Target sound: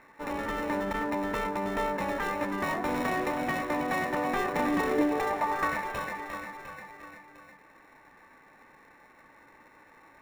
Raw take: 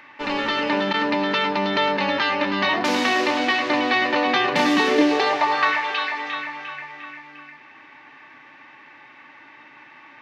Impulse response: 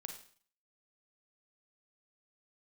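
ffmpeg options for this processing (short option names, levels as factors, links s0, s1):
-filter_complex "[0:a]acrossover=split=2100[s0][s1];[s0]crystalizer=i=1.5:c=0[s2];[s1]acrusher=samples=28:mix=1:aa=0.000001[s3];[s2][s3]amix=inputs=2:normalize=0,volume=0.376"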